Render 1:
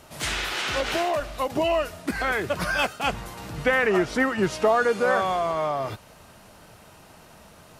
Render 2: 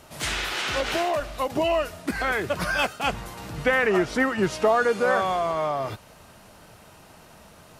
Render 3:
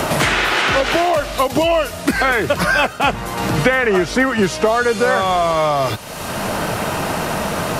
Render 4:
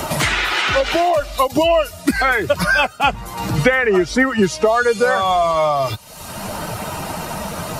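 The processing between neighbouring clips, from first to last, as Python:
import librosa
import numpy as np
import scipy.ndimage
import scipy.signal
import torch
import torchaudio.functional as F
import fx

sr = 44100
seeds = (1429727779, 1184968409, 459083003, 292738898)

y1 = x
y2 = fx.band_squash(y1, sr, depth_pct=100)
y2 = y2 * 10.0 ** (8.0 / 20.0)
y3 = fx.bin_expand(y2, sr, power=1.5)
y3 = y3 * 10.0 ** (2.5 / 20.0)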